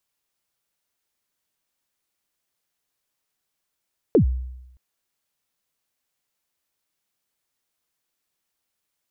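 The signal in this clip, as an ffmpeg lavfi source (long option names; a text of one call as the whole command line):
ffmpeg -f lavfi -i "aevalsrc='0.316*pow(10,-3*t/0.91)*sin(2*PI*(520*0.101/log(63/520)*(exp(log(63/520)*min(t,0.101)/0.101)-1)+63*max(t-0.101,0)))':duration=0.62:sample_rate=44100" out.wav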